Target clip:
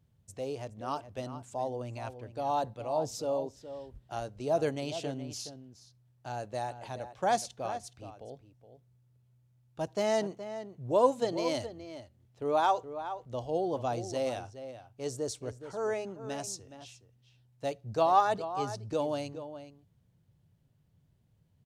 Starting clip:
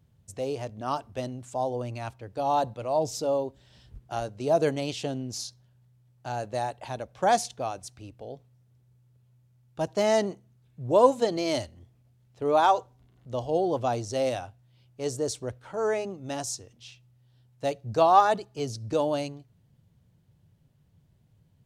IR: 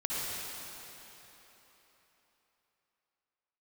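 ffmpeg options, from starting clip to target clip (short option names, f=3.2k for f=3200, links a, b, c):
-filter_complex "[0:a]asplit=2[a][b];[b]adelay=419.8,volume=-11dB,highshelf=f=4k:g=-9.45[c];[a][c]amix=inputs=2:normalize=0,volume=-5.5dB"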